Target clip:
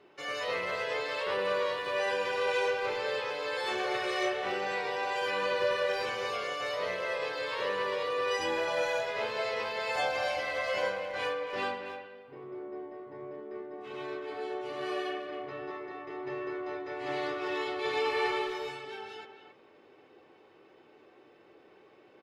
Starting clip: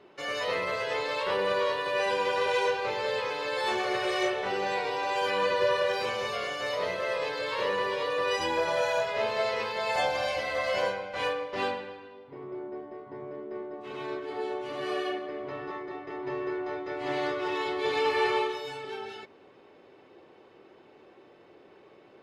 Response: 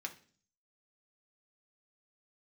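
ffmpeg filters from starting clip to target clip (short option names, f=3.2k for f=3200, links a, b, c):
-filter_complex "[0:a]asplit=2[a][b];[b]adelay=270,highpass=300,lowpass=3.4k,asoftclip=type=hard:threshold=-24.5dB,volume=-8dB[c];[a][c]amix=inputs=2:normalize=0,asplit=2[d][e];[1:a]atrim=start_sample=2205[f];[e][f]afir=irnorm=-1:irlink=0,volume=-2dB[g];[d][g]amix=inputs=2:normalize=0,volume=-7dB"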